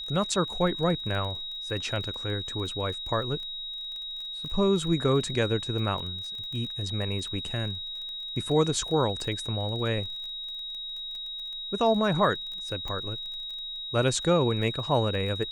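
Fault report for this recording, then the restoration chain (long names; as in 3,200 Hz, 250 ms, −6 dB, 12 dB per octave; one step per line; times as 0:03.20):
surface crackle 21 per second −35 dBFS
whistle 3,800 Hz −34 dBFS
0:12.88: click −22 dBFS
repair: click removal
notch filter 3,800 Hz, Q 30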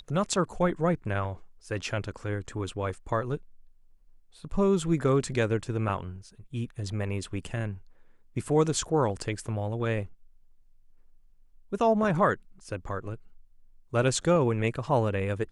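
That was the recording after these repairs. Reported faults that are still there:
none of them is left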